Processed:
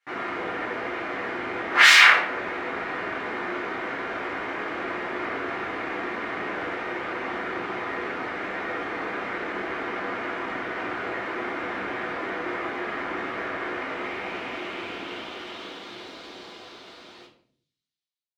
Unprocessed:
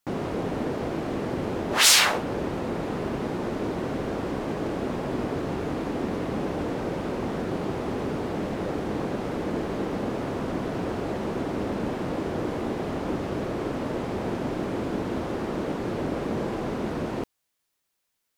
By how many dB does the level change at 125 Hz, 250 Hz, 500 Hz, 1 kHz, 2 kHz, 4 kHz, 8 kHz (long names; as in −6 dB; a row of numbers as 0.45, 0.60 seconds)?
−15.5, −7.5, −4.0, +3.5, +10.5, +1.0, −8.0 decibels